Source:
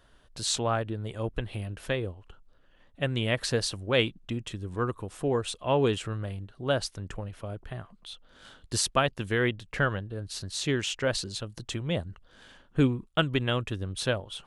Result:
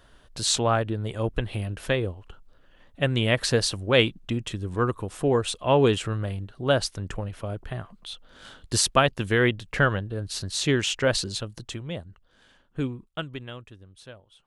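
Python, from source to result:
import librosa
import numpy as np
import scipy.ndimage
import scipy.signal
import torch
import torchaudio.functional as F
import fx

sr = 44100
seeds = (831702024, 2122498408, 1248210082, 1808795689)

y = fx.gain(x, sr, db=fx.line((11.33, 5.0), (12.01, -5.5), (13.06, -5.5), (13.92, -17.0)))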